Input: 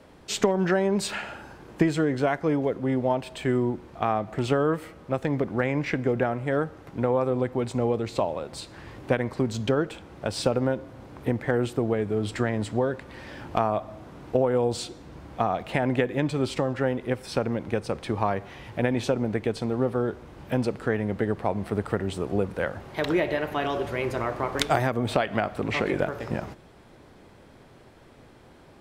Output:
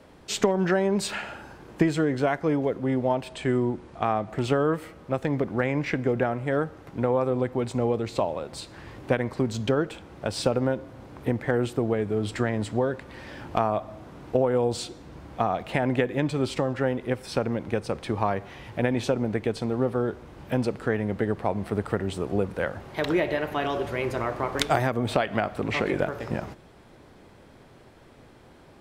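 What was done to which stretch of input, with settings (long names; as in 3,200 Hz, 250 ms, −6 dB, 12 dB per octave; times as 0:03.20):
0:03.28–0:04.30: bad sample-rate conversion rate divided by 2×, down none, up filtered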